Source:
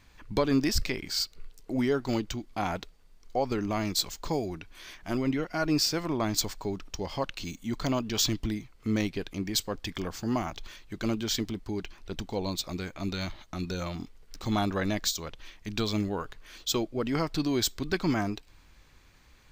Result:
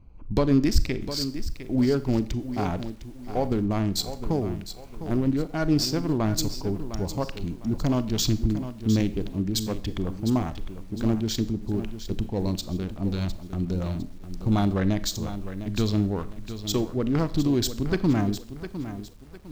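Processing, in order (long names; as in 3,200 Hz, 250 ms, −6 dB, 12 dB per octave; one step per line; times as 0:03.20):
adaptive Wiener filter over 25 samples
low-shelf EQ 280 Hz +10 dB
four-comb reverb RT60 0.49 s, combs from 28 ms, DRR 14 dB
feedback echo at a low word length 706 ms, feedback 35%, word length 8 bits, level −11 dB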